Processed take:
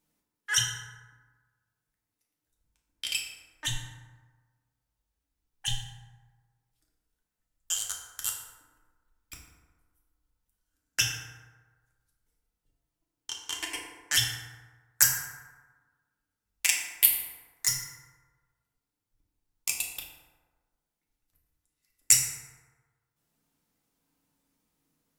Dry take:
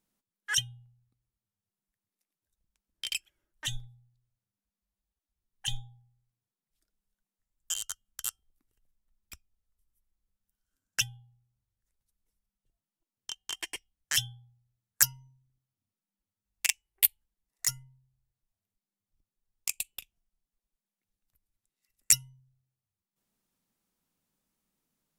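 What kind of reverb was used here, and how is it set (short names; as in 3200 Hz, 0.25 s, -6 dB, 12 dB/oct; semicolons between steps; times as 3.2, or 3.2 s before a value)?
FDN reverb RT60 1.4 s, low-frequency decay 0.9×, high-frequency decay 0.45×, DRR -2 dB; gain +1 dB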